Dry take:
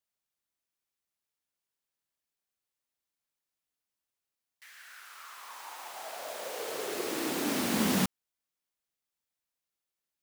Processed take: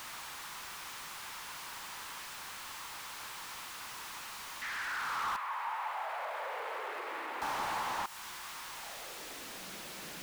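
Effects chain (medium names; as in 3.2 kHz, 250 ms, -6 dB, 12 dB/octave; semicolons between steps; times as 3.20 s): jump at every zero crossing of -37 dBFS; compression 6:1, threshold -32 dBFS, peak gain reduction 9.5 dB; 5.36–7.42 s: FFT filter 540 Hz 0 dB, 800 Hz -9 dB, 2.1 kHz -4 dB, 5.9 kHz -23 dB; high-pass sweep 1 kHz -> 170 Hz, 8.70–9.63 s; dynamic bell 850 Hz, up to +6 dB, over -58 dBFS, Q 4.7; slew-rate limiter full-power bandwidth 27 Hz; trim +2.5 dB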